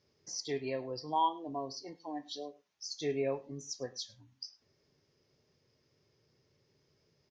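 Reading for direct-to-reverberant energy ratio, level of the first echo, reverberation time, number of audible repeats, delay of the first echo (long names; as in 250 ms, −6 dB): no reverb audible, −22.0 dB, no reverb audible, 1, 103 ms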